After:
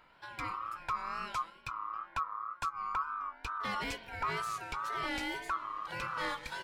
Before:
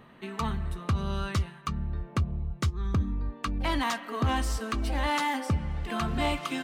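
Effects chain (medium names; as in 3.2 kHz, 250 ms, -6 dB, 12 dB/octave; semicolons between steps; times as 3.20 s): ring modulator 1.2 kHz; wow and flutter 81 cents; trim -6 dB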